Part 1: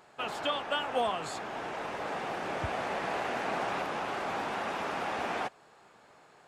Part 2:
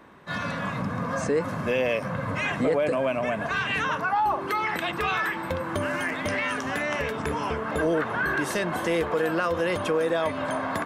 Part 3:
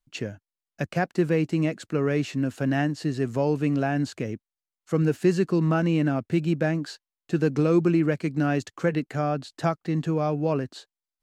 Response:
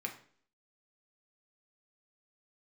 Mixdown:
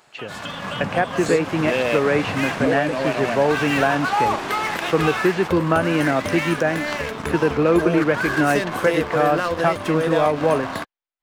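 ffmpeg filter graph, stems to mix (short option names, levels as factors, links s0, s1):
-filter_complex "[0:a]highshelf=f=2100:g=10,acompressor=threshold=0.0158:ratio=6,volume=1[s0];[1:a]aeval=exprs='sgn(val(0))*max(abs(val(0))-0.0168,0)':c=same,volume=0.708[s1];[2:a]acrossover=split=410 3500:gain=0.251 1 0.0794[s2][s3][s4];[s2][s3][s4]amix=inputs=3:normalize=0,volume=1.33[s5];[s0][s1][s5]amix=inputs=3:normalize=0,dynaudnorm=f=120:g=9:m=2.82,alimiter=limit=0.447:level=0:latency=1:release=270"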